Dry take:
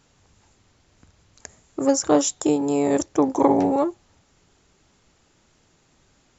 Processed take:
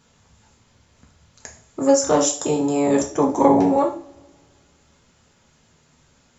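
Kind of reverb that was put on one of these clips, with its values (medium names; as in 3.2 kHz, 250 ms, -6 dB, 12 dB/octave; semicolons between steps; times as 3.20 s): two-slope reverb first 0.4 s, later 2 s, from -28 dB, DRR 0 dB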